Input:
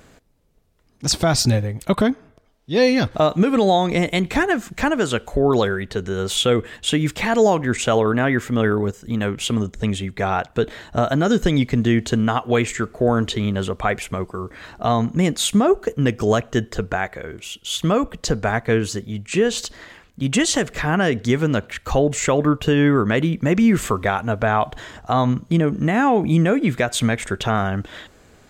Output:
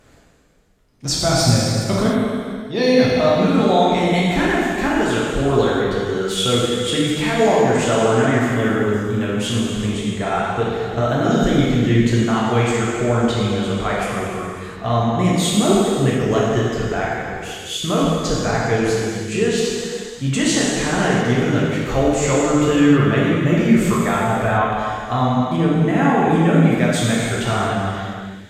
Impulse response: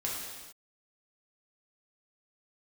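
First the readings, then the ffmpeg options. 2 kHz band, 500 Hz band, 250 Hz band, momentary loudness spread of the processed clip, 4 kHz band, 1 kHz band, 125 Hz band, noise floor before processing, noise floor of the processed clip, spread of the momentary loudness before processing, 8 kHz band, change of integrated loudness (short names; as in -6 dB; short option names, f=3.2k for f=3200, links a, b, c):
+1.5 dB, +2.0 dB, +2.5 dB, 8 LU, +2.0 dB, +2.0 dB, +2.5 dB, -54 dBFS, -33 dBFS, 8 LU, +2.0 dB, +2.0 dB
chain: -filter_complex "[1:a]atrim=start_sample=2205,asetrate=28665,aresample=44100[a];[0:a][a]afir=irnorm=-1:irlink=0,volume=-6dB"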